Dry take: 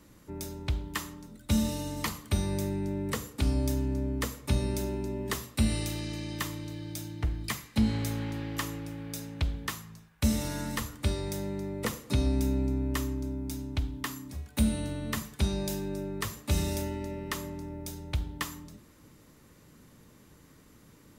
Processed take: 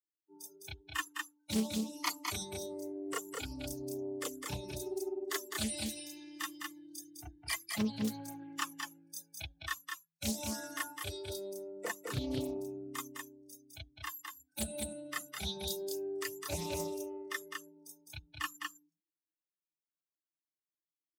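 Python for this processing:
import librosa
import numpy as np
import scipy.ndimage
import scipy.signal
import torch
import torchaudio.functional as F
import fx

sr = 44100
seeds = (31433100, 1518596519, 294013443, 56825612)

y = fx.bin_expand(x, sr, power=3.0)
y = scipy.signal.sosfilt(scipy.signal.butter(2, 190.0, 'highpass', fs=sr, output='sos'), y)
y = fx.high_shelf(y, sr, hz=4800.0, db=5.0)
y = y + 10.0 ** (-4.0 / 20.0) * np.pad(y, (int(207 * sr / 1000.0), 0))[:len(y)]
y = fx.chorus_voices(y, sr, voices=2, hz=0.12, base_ms=30, depth_ms=2.1, mix_pct=60)
y = fx.dynamic_eq(y, sr, hz=250.0, q=2.6, threshold_db=-54.0, ratio=4.0, max_db=-5)
y = fx.doppler_dist(y, sr, depth_ms=0.54)
y = y * librosa.db_to_amplitude(6.0)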